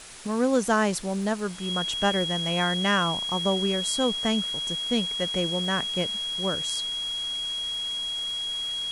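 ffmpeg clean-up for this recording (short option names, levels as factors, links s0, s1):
-af "adeclick=t=4,bandreject=f=3300:w=30,afwtdn=0.0079"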